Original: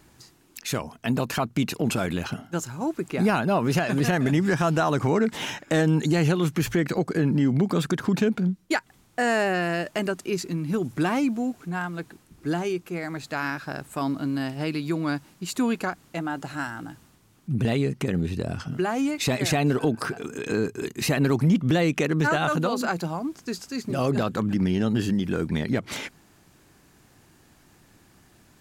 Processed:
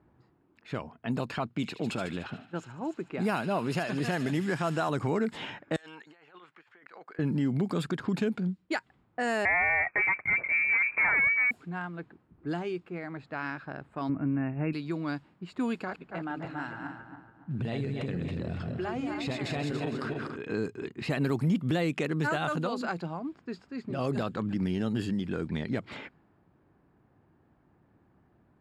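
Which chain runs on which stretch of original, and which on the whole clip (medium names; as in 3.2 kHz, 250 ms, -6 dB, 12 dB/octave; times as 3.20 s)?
1.47–4.89 s: high-pass 120 Hz 6 dB/octave + feedback echo behind a high-pass 74 ms, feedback 77%, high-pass 3.1 kHz, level -7 dB
5.76–7.19 s: Bessel high-pass 1.7 kHz + compressor with a negative ratio -43 dBFS
9.45–11.51 s: waveshaping leveller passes 3 + frequency inversion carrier 2.5 kHz
14.09–14.73 s: brick-wall FIR low-pass 2.8 kHz + bass shelf 260 Hz +9 dB
15.74–20.36 s: backward echo that repeats 142 ms, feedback 60%, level -4 dB + compression 2.5:1, threshold -23 dBFS
whole clip: high-pass 50 Hz; band-stop 6 kHz, Q 5.3; level-controlled noise filter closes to 1.1 kHz, open at -17.5 dBFS; trim -6.5 dB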